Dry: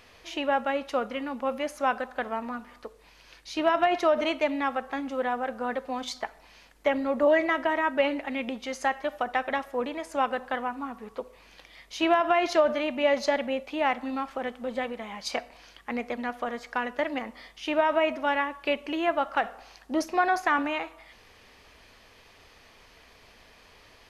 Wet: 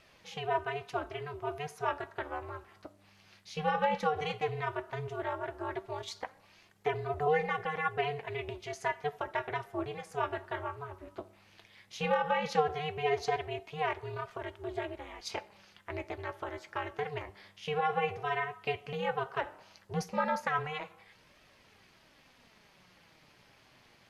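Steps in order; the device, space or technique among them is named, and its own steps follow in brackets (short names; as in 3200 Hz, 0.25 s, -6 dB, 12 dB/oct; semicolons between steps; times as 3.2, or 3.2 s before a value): alien voice (ring modulator 150 Hz; flange 0.14 Hz, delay 1.5 ms, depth 9.9 ms, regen +61%)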